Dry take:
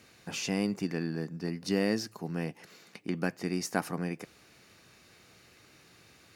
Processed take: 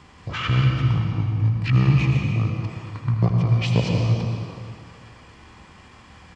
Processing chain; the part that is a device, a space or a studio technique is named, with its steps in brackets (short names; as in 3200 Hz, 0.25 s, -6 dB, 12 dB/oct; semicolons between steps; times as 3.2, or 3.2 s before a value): monster voice (pitch shift -7.5 st; formant shift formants -5.5 st; low shelf 120 Hz +6.5 dB; echo 80 ms -11 dB; reverb RT60 2.2 s, pre-delay 0.102 s, DRR 1 dB); gain +8 dB